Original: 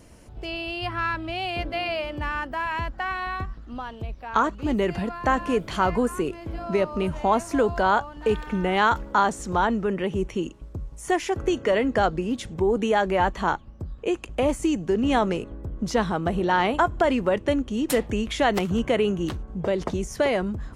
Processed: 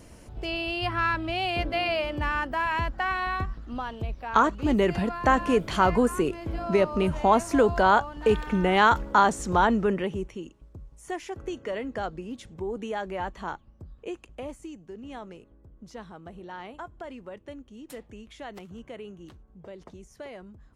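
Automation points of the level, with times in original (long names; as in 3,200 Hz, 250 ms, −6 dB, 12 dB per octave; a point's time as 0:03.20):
0:09.89 +1 dB
0:10.39 −10.5 dB
0:14.09 −10.5 dB
0:14.79 −19 dB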